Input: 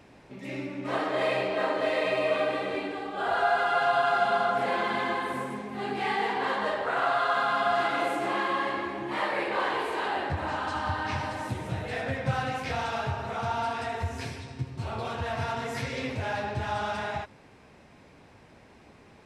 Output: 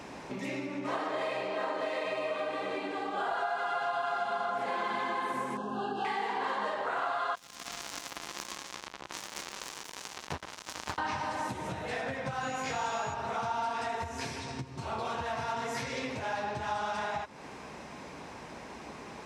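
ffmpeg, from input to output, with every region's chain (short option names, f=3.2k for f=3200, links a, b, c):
-filter_complex "[0:a]asettb=1/sr,asplit=3[a][b][c];[a]atrim=end=5.574[d];[b]atrim=start=5.57:end=6.05,asetpts=PTS-STARTPTS,afade=t=in:d=0.004:c=qsin,afade=t=out:st=0.476:d=0.004:c=qsin,asuperstop=centerf=2100:order=20:qfactor=2.4,highshelf=f=5.3k:g=-10[e];[c]atrim=start=6.046[f];[d][e]acrossfade=d=0.004:c1=hsin:c2=qsin[g];[g][f]acrossfade=d=0.004:c1=qsin:c2=hsin,asettb=1/sr,asplit=3[h][i][j];[h]atrim=end=7.354[k];[i]atrim=start=7.35:end=10.98,asetpts=PTS-STARTPTS,afade=t=in:d=0.004:c=qsin,afade=t=out:st=3.626:d=0.004:c=qsin,volume=28.5dB,asoftclip=hard,volume=-28.5dB,acrossover=split=220|3000[l][m][n];[m]acompressor=threshold=-42dB:ratio=3:attack=3.2:release=140:knee=2.83:detection=peak[o];[l][o][n]amix=inputs=3:normalize=0,acrusher=bits=4:mix=0:aa=0.5[p];[j]atrim=start=10.976[q];[k][p]acrossfade=d=0.004:c1=hsin:c2=qsin[r];[r][q]acrossfade=d=0.004:c1=qsin:c2=hsin,asettb=1/sr,asplit=3[s][t][u];[s]atrim=end=12.414[v];[t]atrim=start=12.41:end=13.14,asetpts=PTS-STARTPTS,afade=t=in:d=0.004:c=qsin,afade=t=out:st=0.726:d=0.004:c=qsin,aeval=exprs='val(0)+0.00224*sin(2*PI*6800*n/s)':c=same,asplit=2[w][x];[x]adelay=19,volume=-4dB[y];[w][y]amix=inputs=2:normalize=0,atrim=end_sample=32193[z];[u]atrim=start=13.136[aa];[v][z]acrossfade=d=0.004:c1=hsin:c2=qsin[ab];[ab][aa]acrossfade=d=0.004:c1=qsin:c2=hsin,highpass=56,acompressor=threshold=-43dB:ratio=5,equalizer=f=100:t=o:w=0.67:g=-10,equalizer=f=1k:t=o:w=0.67:g=5,equalizer=f=6.3k:t=o:w=0.67:g=6,volume=8.5dB"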